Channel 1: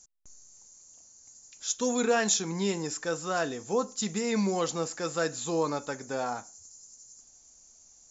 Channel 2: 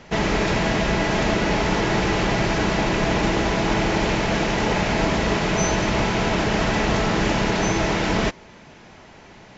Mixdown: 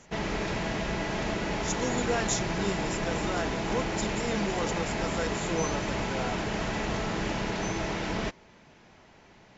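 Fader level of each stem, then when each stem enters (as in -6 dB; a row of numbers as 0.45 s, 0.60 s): -4.5 dB, -10.0 dB; 0.00 s, 0.00 s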